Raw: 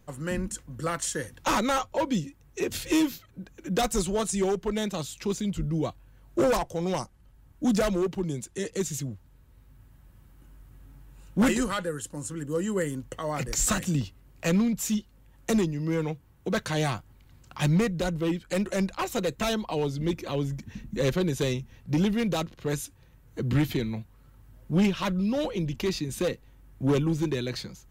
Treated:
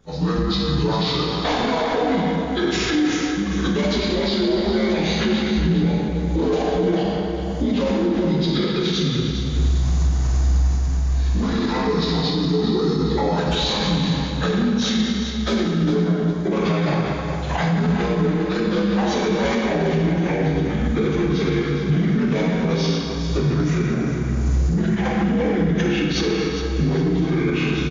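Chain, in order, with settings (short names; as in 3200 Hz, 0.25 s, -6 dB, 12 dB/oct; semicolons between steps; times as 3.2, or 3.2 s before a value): inharmonic rescaling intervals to 81%; recorder AGC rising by 30 dB/s; plate-style reverb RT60 2.2 s, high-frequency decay 0.75×, DRR -3.5 dB; limiter -17 dBFS, peak gain reduction 10.5 dB; on a send: feedback echo 0.406 s, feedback 33%, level -9 dB; on the sum: ending taper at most 220 dB/s; gain +4.5 dB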